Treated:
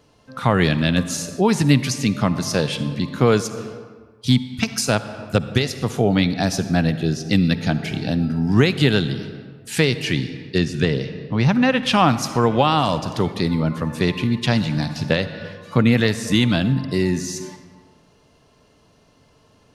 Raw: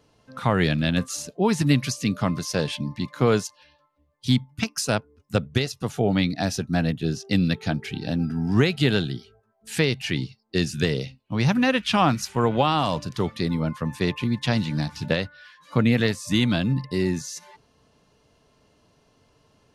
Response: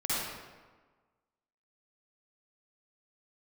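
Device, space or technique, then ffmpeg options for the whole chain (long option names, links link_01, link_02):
ducked reverb: -filter_complex "[0:a]asplit=3[link_01][link_02][link_03];[1:a]atrim=start_sample=2205[link_04];[link_02][link_04]afir=irnorm=-1:irlink=0[link_05];[link_03]apad=whole_len=870591[link_06];[link_05][link_06]sidechaincompress=threshold=-26dB:ratio=5:attack=32:release=403,volume=-14dB[link_07];[link_01][link_07]amix=inputs=2:normalize=0,asettb=1/sr,asplit=3[link_08][link_09][link_10];[link_08]atrim=end=10.584[link_11];[link_09]atrim=start=10.58:end=11.83,asetpts=PTS-STARTPTS,afade=type=in:duration=0.004:curve=qsin,afade=type=out:start_time=1.246:duration=0.004:curve=qsin,aemphasis=mode=reproduction:type=50kf[link_12];[link_10]atrim=start=11.826[link_13];[link_11][link_12]acrossfade=duration=0.004:curve1=hsin:curve2=qsin[link_14];[link_14][link_13]acrossfade=duration=0.004:curve1=qsin:curve2=hsin,volume=3.5dB"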